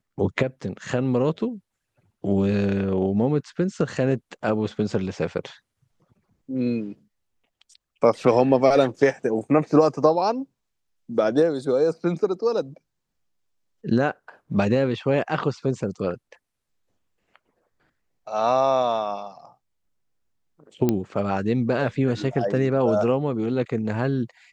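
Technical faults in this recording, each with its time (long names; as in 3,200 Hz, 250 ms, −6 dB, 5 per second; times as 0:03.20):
0:20.89: click −9 dBFS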